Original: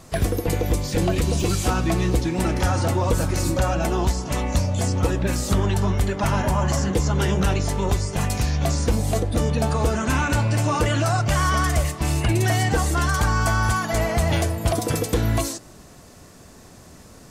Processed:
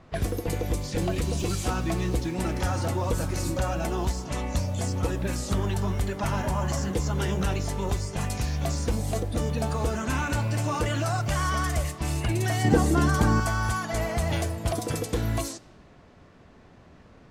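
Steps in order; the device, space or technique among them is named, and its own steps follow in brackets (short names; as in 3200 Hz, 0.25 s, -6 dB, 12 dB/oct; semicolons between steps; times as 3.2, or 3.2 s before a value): cassette deck with a dynamic noise filter (white noise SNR 30 dB; low-pass opened by the level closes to 2100 Hz, open at -18 dBFS); 12.64–13.4 bell 260 Hz +13 dB 2.2 oct; gain -6 dB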